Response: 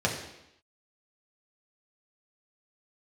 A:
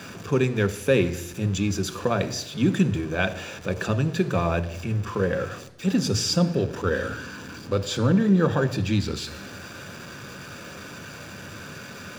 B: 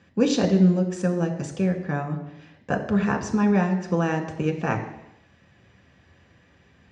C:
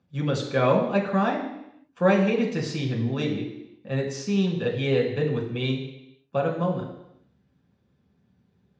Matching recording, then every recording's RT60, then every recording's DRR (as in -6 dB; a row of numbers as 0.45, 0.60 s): C; 0.85, 0.85, 0.85 s; 9.5, 3.0, -2.5 dB